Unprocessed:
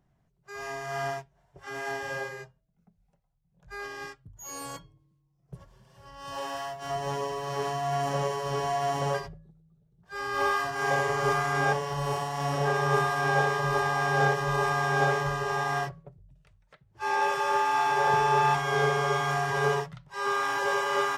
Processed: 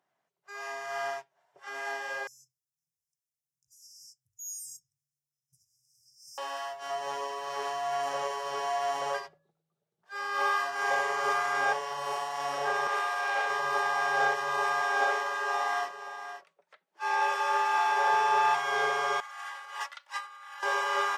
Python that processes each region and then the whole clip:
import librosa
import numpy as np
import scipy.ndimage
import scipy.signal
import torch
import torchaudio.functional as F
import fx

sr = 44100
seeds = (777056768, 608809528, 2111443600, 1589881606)

y = fx.chain(x, sr, fx.brickwall_bandstop(low_hz=150.0, high_hz=4900.0),
    fx.high_shelf(hz=4700.0, db=7.5), at=(2.27, 6.38))
y = fx.chain(y, sr, fx.highpass(hz=410.0, slope=24),
    fx.tube_stage(drive_db=21.0, bias=0.35), at=(12.87, 13.5))
y = fx.chain(y, sr, fx.steep_highpass(hz=170.0, slope=72),
    fx.echo_single(ms=522, db=-10.5), at=(14.81, 17.78))
y = fx.chain(y, sr, fx.highpass(hz=1100.0, slope=12),
    fx.comb(ms=3.5, depth=0.62),
    fx.over_compress(threshold_db=-38.0, ratio=-0.5), at=(19.2, 20.63))
y = scipy.signal.sosfilt(scipy.signal.butter(2, 610.0, 'highpass', fs=sr, output='sos'), y)
y = fx.high_shelf(y, sr, hz=8200.0, db=-6.0)